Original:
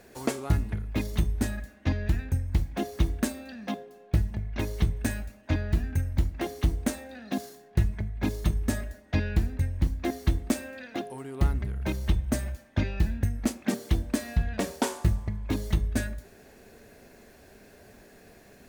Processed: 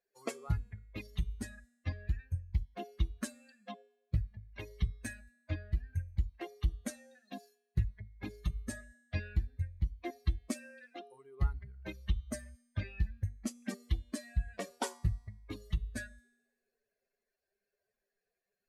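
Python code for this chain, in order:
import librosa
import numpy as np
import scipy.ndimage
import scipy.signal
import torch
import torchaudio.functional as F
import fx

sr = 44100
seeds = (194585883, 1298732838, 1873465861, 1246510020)

y = fx.bin_expand(x, sr, power=2.0)
y = scipy.signal.sosfilt(scipy.signal.butter(4, 12000.0, 'lowpass', fs=sr, output='sos'), y)
y = fx.peak_eq(y, sr, hz=270.0, db=-6.0, octaves=1.2)
y = fx.comb_fb(y, sr, f0_hz=240.0, decay_s=1.0, harmonics='all', damping=0.0, mix_pct=50)
y = F.gain(torch.from_numpy(y), 2.0).numpy()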